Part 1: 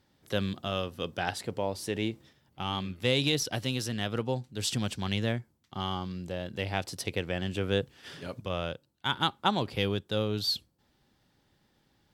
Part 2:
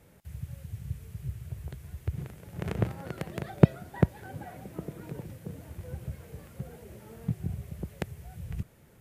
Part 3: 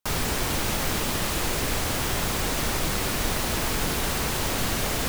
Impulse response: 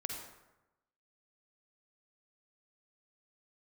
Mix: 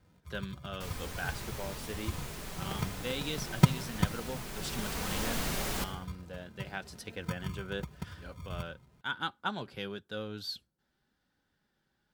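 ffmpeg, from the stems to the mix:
-filter_complex "[0:a]equalizer=frequency=1500:width_type=o:width=0.33:gain=10.5,volume=-6dB[link_01];[1:a]equalizer=frequency=110:width_type=o:width=2.1:gain=8,acrusher=samples=39:mix=1:aa=0.000001,volume=-8.5dB,asplit=2[link_02][link_03];[link_03]volume=-9.5dB[link_04];[2:a]adelay=750,volume=-7dB,afade=type=in:start_time=4.5:duration=0.75:silence=0.354813,asplit=2[link_05][link_06];[link_06]volume=-5dB[link_07];[3:a]atrim=start_sample=2205[link_08];[link_04][link_07]amix=inputs=2:normalize=0[link_09];[link_09][link_08]afir=irnorm=-1:irlink=0[link_10];[link_01][link_02][link_05][link_10]amix=inputs=4:normalize=0,flanger=delay=3.8:depth=1.5:regen=-50:speed=0.97:shape=sinusoidal"

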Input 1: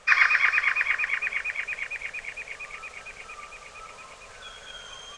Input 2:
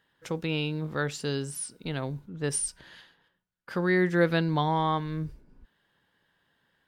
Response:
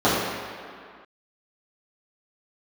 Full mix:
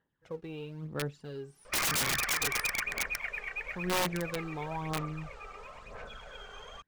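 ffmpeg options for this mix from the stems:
-filter_complex "[0:a]equalizer=frequency=90:width_type=o:width=0.29:gain=-7.5,acrusher=bits=5:mode=log:mix=0:aa=0.000001,adelay=1650,volume=0dB[link_01];[1:a]acrusher=bits=4:mode=log:mix=0:aa=0.000001,volume=-10.5dB[link_02];[link_01][link_02]amix=inputs=2:normalize=0,lowpass=frequency=1000:poles=1,aphaser=in_gain=1:out_gain=1:delay=2.6:decay=0.56:speed=1:type=sinusoidal,aeval=exprs='(mod(15.8*val(0)+1,2)-1)/15.8':channel_layout=same"

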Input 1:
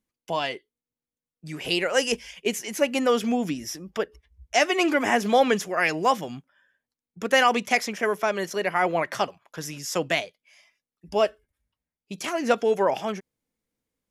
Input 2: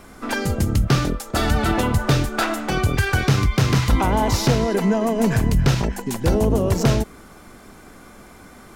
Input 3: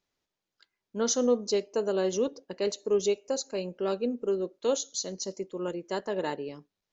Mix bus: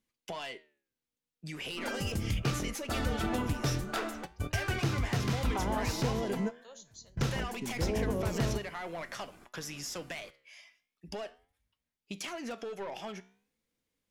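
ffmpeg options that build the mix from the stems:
ffmpeg -i stem1.wav -i stem2.wav -i stem3.wav -filter_complex "[0:a]equalizer=frequency=3200:width_type=o:width=1.9:gain=5,alimiter=limit=-12dB:level=0:latency=1:release=76,volume=3dB,asplit=2[link_01][link_02];[1:a]adelay=1550,volume=-9dB[link_03];[2:a]highpass=820,adelay=2000,volume=-13.5dB[link_04];[link_02]apad=whole_len=454369[link_05];[link_03][link_05]sidechaingate=range=-31dB:threshold=-46dB:ratio=16:detection=peak[link_06];[link_01][link_04]amix=inputs=2:normalize=0,asoftclip=type=tanh:threshold=-18.5dB,acompressor=threshold=-33dB:ratio=10,volume=0dB[link_07];[link_06][link_07]amix=inputs=2:normalize=0,flanger=delay=8:depth=9.2:regen=83:speed=0.42:shape=triangular" out.wav

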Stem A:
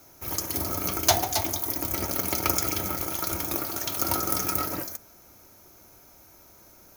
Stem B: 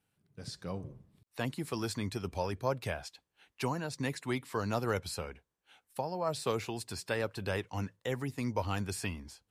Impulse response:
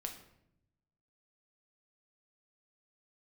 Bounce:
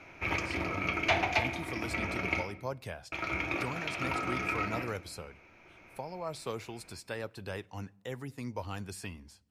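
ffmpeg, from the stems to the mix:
-filter_complex "[0:a]asoftclip=type=tanh:threshold=-17.5dB,lowpass=frequency=2400:width_type=q:width=6.8,volume=-0.5dB,asplit=3[link_01][link_02][link_03];[link_01]atrim=end=2.43,asetpts=PTS-STARTPTS,afade=type=out:start_time=2.426:duration=0.004:curve=hsin[link_04];[link_02]atrim=start=2.43:end=3.12,asetpts=PTS-STARTPTS,volume=0[link_05];[link_03]atrim=start=3.12,asetpts=PTS-STARTPTS,afade=type=in:duration=0.004:curve=hsin[link_06];[link_04][link_05][link_06]concat=n=3:v=0:a=1,asplit=2[link_07][link_08];[link_08]volume=-5dB[link_09];[1:a]volume=-6dB,asplit=3[link_10][link_11][link_12];[link_11]volume=-16dB[link_13];[link_12]apad=whole_len=307167[link_14];[link_07][link_14]sidechaincompress=threshold=-52dB:ratio=8:attack=39:release=1160[link_15];[2:a]atrim=start_sample=2205[link_16];[link_09][link_13]amix=inputs=2:normalize=0[link_17];[link_17][link_16]afir=irnorm=-1:irlink=0[link_18];[link_15][link_10][link_18]amix=inputs=3:normalize=0"

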